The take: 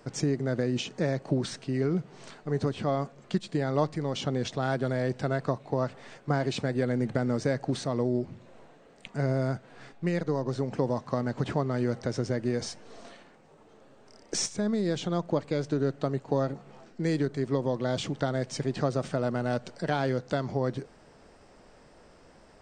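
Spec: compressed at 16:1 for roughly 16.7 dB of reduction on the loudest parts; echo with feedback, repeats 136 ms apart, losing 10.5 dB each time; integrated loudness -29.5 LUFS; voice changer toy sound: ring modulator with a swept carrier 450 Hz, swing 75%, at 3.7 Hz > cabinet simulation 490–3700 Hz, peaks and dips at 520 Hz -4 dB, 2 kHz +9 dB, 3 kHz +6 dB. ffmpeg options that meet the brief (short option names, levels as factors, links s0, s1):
-af "acompressor=threshold=0.0112:ratio=16,aecho=1:1:136|272|408:0.299|0.0896|0.0269,aeval=exprs='val(0)*sin(2*PI*450*n/s+450*0.75/3.7*sin(2*PI*3.7*n/s))':c=same,highpass=490,equalizer=f=520:t=q:w=4:g=-4,equalizer=f=2000:t=q:w=4:g=9,equalizer=f=3000:t=q:w=4:g=6,lowpass=f=3700:w=0.5412,lowpass=f=3700:w=1.3066,volume=10.6"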